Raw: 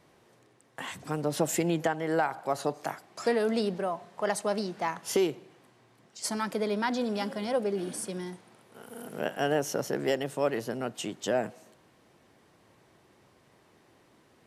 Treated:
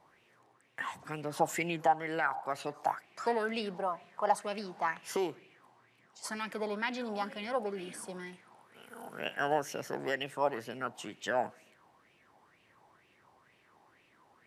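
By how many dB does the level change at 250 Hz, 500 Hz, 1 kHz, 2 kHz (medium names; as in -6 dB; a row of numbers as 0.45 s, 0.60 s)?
-8.5 dB, -6.0 dB, +1.0 dB, 0.0 dB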